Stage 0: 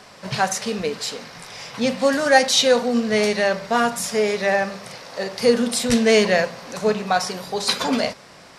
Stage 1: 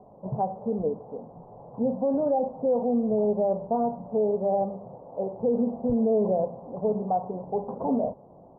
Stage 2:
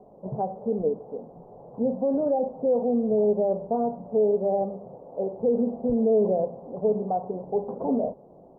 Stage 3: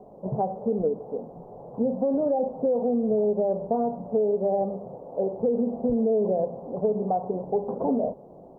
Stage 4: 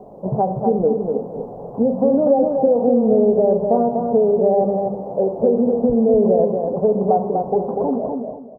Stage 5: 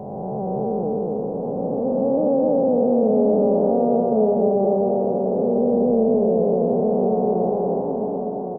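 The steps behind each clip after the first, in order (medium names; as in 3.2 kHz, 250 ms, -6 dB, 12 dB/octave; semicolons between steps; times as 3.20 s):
steep low-pass 870 Hz 48 dB/octave; peak limiter -15 dBFS, peak gain reduction 10 dB; trim -2 dB
fifteen-band graphic EQ 100 Hz -7 dB, 400 Hz +4 dB, 1 kHz -5 dB
compression, threshold -24 dBFS, peak gain reduction 6.5 dB; trim +3.5 dB
fade out at the end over 1.07 s; on a send: feedback delay 244 ms, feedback 26%, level -4.5 dB; on the sum: trim +7.5 dB
spectral blur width 735 ms; delay 1115 ms -6.5 dB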